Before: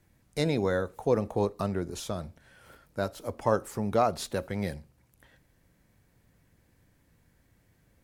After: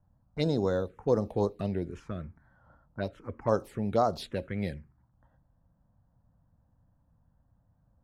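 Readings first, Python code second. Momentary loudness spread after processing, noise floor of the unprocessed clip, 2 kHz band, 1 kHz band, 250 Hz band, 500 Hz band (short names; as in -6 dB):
13 LU, -67 dBFS, -5.5 dB, -2.5 dB, -0.5 dB, -1.0 dB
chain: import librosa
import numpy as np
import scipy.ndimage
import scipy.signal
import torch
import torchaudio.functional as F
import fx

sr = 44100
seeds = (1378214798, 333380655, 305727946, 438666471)

y = fx.env_phaser(x, sr, low_hz=380.0, high_hz=2500.0, full_db=-22.0)
y = fx.env_lowpass(y, sr, base_hz=920.0, full_db=-25.0)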